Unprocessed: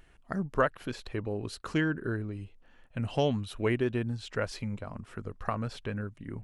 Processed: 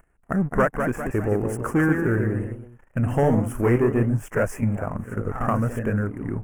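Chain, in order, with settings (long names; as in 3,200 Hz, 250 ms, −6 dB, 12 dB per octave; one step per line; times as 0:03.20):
leveller curve on the samples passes 3
delay with pitch and tempo change per echo 234 ms, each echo +1 semitone, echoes 3, each echo −6 dB
Butterworth band-reject 4,000 Hz, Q 0.66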